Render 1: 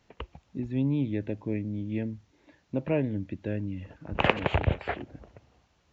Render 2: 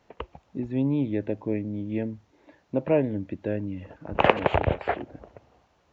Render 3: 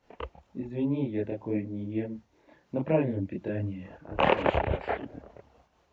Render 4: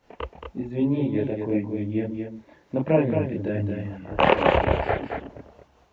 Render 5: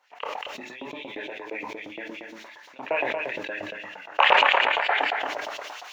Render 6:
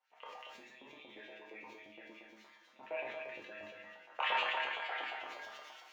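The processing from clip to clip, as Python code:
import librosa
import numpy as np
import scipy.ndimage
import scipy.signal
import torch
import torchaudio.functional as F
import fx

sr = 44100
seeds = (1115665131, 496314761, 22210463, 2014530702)

y1 = fx.peak_eq(x, sr, hz=660.0, db=9.0, octaves=2.7)
y1 = y1 * 10.0 ** (-2.0 / 20.0)
y2 = fx.chorus_voices(y1, sr, voices=4, hz=1.2, base_ms=28, depth_ms=3.0, mix_pct=55)
y2 = fx.am_noise(y2, sr, seeds[0], hz=5.7, depth_pct=50)
y2 = y2 * 10.0 ** (3.5 / 20.0)
y3 = y2 + 10.0 ** (-6.0 / 20.0) * np.pad(y2, (int(224 * sr / 1000.0), 0))[:len(y2)]
y3 = y3 * 10.0 ** (5.0 / 20.0)
y4 = fx.filter_lfo_highpass(y3, sr, shape='saw_up', hz=8.6, low_hz=680.0, high_hz=3900.0, q=1.7)
y4 = fx.room_shoebox(y4, sr, seeds[1], volume_m3=320.0, walls='furnished', distance_m=0.34)
y4 = fx.sustainer(y4, sr, db_per_s=21.0)
y5 = fx.comb_fb(y4, sr, f0_hz=71.0, decay_s=0.45, harmonics='odd', damping=0.0, mix_pct=90)
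y5 = y5 + 10.0 ** (-22.0 / 20.0) * np.pad(y5, (int(638 * sr / 1000.0), 0))[:len(y5)]
y5 = fx.room_shoebox(y5, sr, seeds[2], volume_m3=63.0, walls='mixed', distance_m=0.32)
y5 = y5 * 10.0 ** (-5.0 / 20.0)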